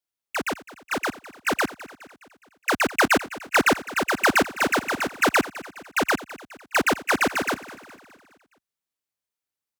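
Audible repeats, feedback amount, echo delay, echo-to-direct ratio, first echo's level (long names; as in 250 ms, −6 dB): 4, 53%, 208 ms, −15.5 dB, −17.0 dB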